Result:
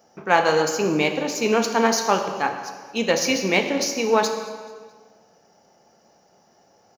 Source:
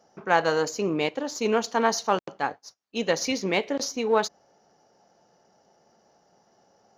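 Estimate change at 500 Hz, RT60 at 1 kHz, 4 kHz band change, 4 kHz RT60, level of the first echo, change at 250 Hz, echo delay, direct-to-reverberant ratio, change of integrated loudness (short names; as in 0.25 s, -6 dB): +4.0 dB, 1.5 s, +5.5 dB, 1.3 s, -20.5 dB, +5.0 dB, 0.217 s, 5.0 dB, +4.5 dB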